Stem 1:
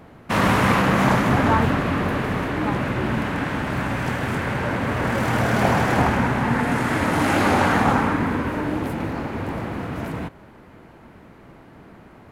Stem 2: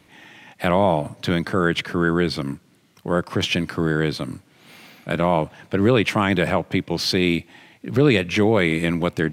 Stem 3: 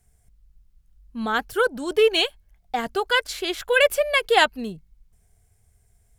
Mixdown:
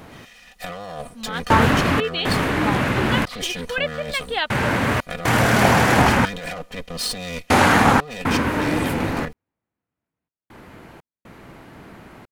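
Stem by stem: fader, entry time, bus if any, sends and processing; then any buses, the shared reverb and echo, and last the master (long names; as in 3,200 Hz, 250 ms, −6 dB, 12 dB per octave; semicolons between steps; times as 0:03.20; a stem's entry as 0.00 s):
+2.5 dB, 0.00 s, no send, gate pattern "x.....xx.xxx" 60 BPM −60 dB
−9.0 dB, 0.00 s, no send, lower of the sound and its delayed copy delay 1.6 ms; comb filter 4.1 ms, depth 76%; compressor whose output falls as the input rises −23 dBFS, ratio −1
−9.0 dB, 0.00 s, no send, Butterworth low-pass 4,300 Hz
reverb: not used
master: high-shelf EQ 2,100 Hz +7.5 dB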